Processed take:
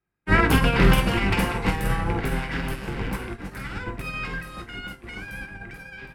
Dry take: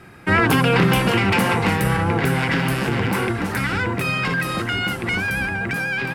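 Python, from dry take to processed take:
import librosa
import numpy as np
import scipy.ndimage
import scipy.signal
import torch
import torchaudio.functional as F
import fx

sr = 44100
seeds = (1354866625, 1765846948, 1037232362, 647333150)

y = fx.octave_divider(x, sr, octaves=2, level_db=-1.0)
y = fx.room_early_taps(y, sr, ms=(20, 48), db=(-9.5, -7.0))
y = fx.upward_expand(y, sr, threshold_db=-38.0, expansion=2.5)
y = y * librosa.db_to_amplitude(-1.0)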